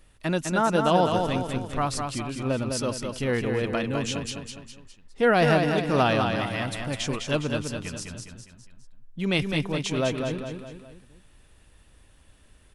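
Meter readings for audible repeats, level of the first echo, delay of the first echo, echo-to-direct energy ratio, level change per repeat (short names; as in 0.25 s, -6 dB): 4, -5.0 dB, 0.205 s, -4.0 dB, -6.5 dB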